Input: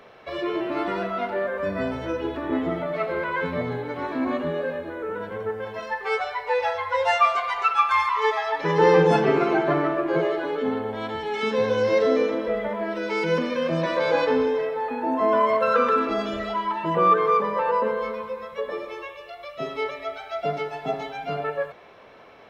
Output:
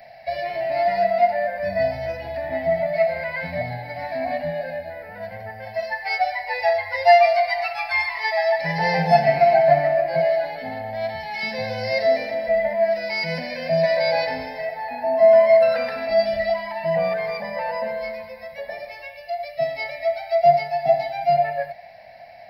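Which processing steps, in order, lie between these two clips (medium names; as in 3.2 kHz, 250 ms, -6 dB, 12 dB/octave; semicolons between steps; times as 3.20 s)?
FFT filter 150 Hz 0 dB, 250 Hz -11 dB, 400 Hz -30 dB, 690 Hz +13 dB, 1.2 kHz -25 dB, 1.9 kHz +7 dB, 3.4 kHz -10 dB, 4.8 kHz +15 dB, 6.8 kHz -23 dB, 11 kHz +7 dB; trim +2 dB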